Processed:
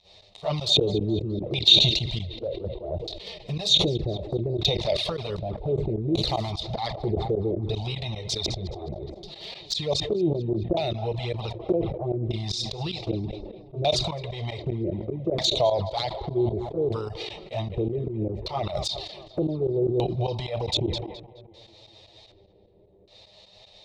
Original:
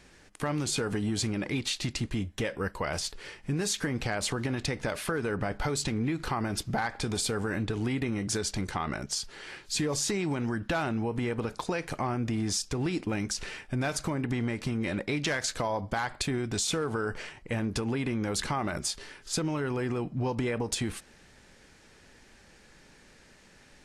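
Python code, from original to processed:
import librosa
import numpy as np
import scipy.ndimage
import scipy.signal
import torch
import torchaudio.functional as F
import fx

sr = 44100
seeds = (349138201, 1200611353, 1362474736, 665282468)

p1 = fx.crossing_spikes(x, sr, level_db=-32.5, at=(5.36, 6.51))
p2 = scipy.signal.sosfilt(scipy.signal.butter(2, 43.0, 'highpass', fs=sr, output='sos'), p1)
p3 = fx.fixed_phaser(p2, sr, hz=640.0, stages=4)
p4 = fx.filter_lfo_lowpass(p3, sr, shape='square', hz=0.65, low_hz=350.0, high_hz=4000.0, q=4.5)
p5 = p4 + fx.echo_filtered(p4, sr, ms=211, feedback_pct=69, hz=3200.0, wet_db=-15.5, dry=0)
p6 = fx.volume_shaper(p5, sr, bpm=151, per_beat=2, depth_db=-22, release_ms=143.0, shape='fast start')
p7 = fx.low_shelf(p6, sr, hz=74.0, db=3.5)
p8 = fx.env_flanger(p7, sr, rest_ms=11.5, full_db=-28.5)
p9 = fx.small_body(p8, sr, hz=(640.0, 3700.0), ring_ms=20, db=10)
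p10 = fx.sustainer(p9, sr, db_per_s=54.0)
y = F.gain(torch.from_numpy(p10), 6.0).numpy()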